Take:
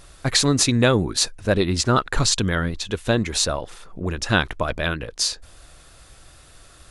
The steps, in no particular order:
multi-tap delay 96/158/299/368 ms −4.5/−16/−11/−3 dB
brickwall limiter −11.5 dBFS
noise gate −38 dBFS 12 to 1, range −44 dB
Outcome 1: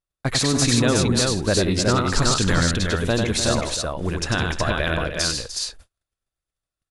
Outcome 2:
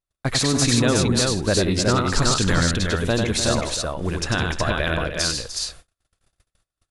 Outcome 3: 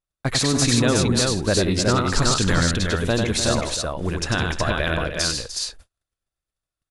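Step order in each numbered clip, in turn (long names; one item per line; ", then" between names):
noise gate, then brickwall limiter, then multi-tap delay
brickwall limiter, then multi-tap delay, then noise gate
brickwall limiter, then noise gate, then multi-tap delay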